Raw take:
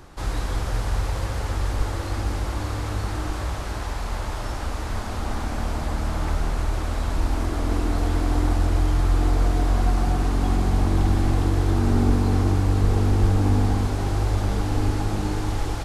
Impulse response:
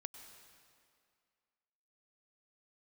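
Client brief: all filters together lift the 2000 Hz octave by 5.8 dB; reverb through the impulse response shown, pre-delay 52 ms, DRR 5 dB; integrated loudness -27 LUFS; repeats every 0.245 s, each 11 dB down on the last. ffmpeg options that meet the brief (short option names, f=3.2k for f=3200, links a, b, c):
-filter_complex "[0:a]equalizer=f=2k:t=o:g=7.5,aecho=1:1:245|490|735:0.282|0.0789|0.0221,asplit=2[a][b];[1:a]atrim=start_sample=2205,adelay=52[c];[b][c]afir=irnorm=-1:irlink=0,volume=-1dB[d];[a][d]amix=inputs=2:normalize=0,volume=-4.5dB"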